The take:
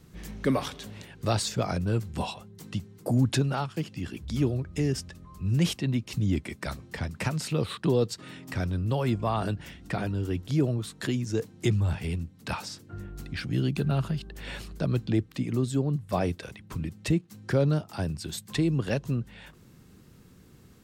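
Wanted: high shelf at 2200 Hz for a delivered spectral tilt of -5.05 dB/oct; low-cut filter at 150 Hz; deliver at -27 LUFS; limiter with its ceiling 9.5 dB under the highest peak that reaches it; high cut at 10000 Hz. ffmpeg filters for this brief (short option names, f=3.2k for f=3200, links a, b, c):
-af "highpass=150,lowpass=10k,highshelf=f=2.2k:g=3.5,volume=7dB,alimiter=limit=-15.5dB:level=0:latency=1"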